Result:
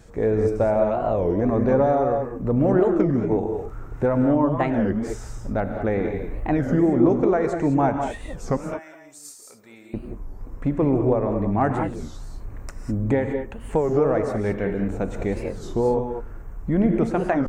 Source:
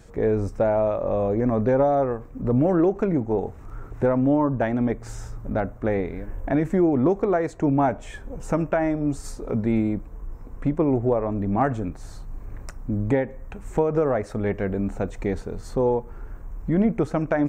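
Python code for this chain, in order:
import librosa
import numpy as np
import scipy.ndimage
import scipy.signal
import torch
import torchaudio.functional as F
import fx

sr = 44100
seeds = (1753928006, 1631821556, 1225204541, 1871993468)

y = fx.differentiator(x, sr, at=(8.57, 9.94))
y = fx.rev_gated(y, sr, seeds[0], gate_ms=230, shape='rising', drr_db=4.5)
y = fx.record_warp(y, sr, rpm=33.33, depth_cents=250.0)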